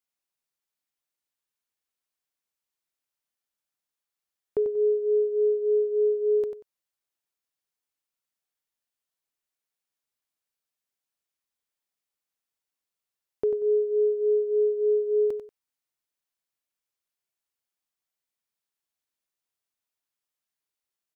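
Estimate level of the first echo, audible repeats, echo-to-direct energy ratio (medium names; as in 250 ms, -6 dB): -8.0 dB, 2, -8.0 dB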